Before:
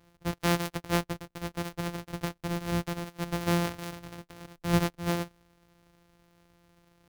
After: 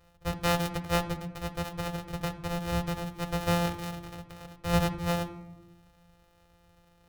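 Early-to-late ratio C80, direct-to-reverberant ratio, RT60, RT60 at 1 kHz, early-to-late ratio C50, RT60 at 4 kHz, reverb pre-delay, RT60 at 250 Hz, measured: 15.5 dB, 5.0 dB, 1.0 s, 0.90 s, 13.0 dB, 0.55 s, 4 ms, 1.4 s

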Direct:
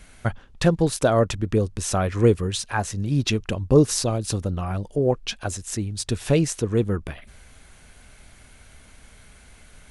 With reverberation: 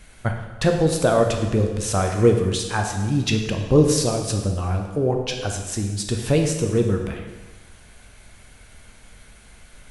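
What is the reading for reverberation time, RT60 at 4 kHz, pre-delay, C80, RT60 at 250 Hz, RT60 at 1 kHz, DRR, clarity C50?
1.3 s, 1.2 s, 5 ms, 7.0 dB, 1.3 s, 1.3 s, 3.0 dB, 5.0 dB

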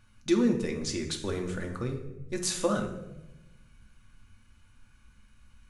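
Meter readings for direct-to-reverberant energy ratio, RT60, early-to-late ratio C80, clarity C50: 2.5 dB, 0.95 s, 11.0 dB, 8.0 dB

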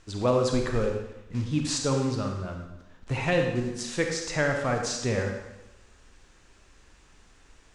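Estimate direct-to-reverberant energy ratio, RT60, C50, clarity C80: 2.5 dB, 0.95 s, 4.0 dB, 6.0 dB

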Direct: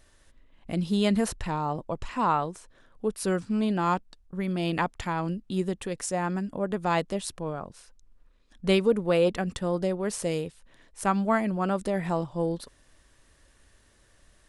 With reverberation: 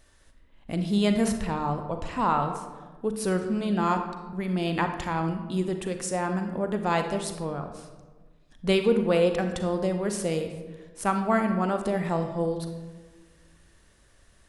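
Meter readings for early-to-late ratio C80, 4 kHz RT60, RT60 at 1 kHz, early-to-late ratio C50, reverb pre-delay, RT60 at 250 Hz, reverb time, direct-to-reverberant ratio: 9.5 dB, 0.70 s, 1.2 s, 7.0 dB, 34 ms, 1.8 s, 1.4 s, 6.0 dB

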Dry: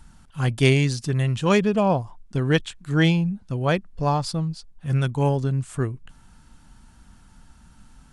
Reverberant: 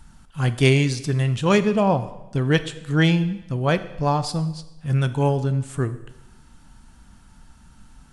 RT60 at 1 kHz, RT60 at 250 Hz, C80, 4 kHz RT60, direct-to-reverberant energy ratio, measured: 0.95 s, 1.0 s, 16.5 dB, 0.90 s, 11.5 dB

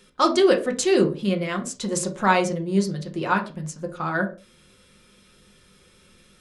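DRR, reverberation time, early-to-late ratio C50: 2.5 dB, no single decay rate, 12.5 dB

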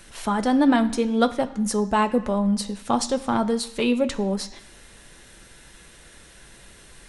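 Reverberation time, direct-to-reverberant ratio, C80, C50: 1.1 s, 7.0 dB, 17.0 dB, 15.0 dB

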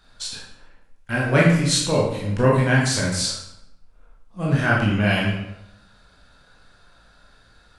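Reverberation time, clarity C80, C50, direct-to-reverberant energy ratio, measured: 0.85 s, 5.0 dB, 1.5 dB, -5.0 dB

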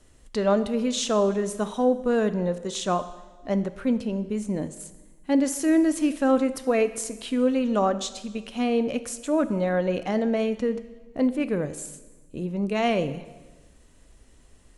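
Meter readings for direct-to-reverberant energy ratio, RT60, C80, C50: 12.0 dB, 1.3 s, 15.5 dB, 14.0 dB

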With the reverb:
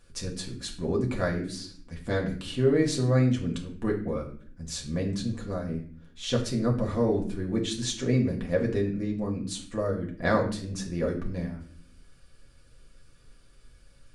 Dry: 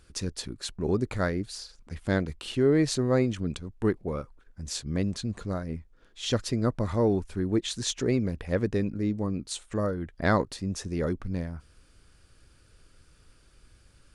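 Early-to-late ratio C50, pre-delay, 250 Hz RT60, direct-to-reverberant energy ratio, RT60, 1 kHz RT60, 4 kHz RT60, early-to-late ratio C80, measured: 9.0 dB, 4 ms, 0.95 s, -1.5 dB, 0.55 s, 0.45 s, 0.40 s, 12.5 dB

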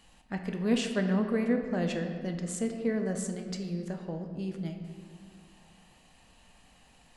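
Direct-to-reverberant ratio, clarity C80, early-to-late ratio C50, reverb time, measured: 4.0 dB, 7.5 dB, 6.5 dB, 2.0 s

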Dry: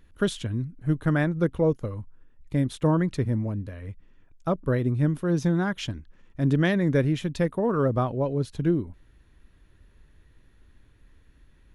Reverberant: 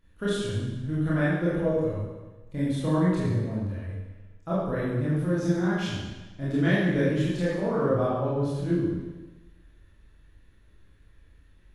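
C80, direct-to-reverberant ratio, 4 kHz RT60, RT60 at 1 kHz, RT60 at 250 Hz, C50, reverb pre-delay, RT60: 1.5 dB, -9.5 dB, 1.1 s, 1.2 s, 1.1 s, -1.0 dB, 22 ms, 1.2 s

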